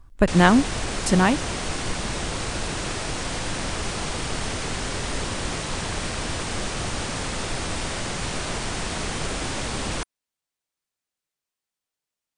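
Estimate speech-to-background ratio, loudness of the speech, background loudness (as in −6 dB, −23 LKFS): 9.0 dB, −19.5 LKFS, −28.5 LKFS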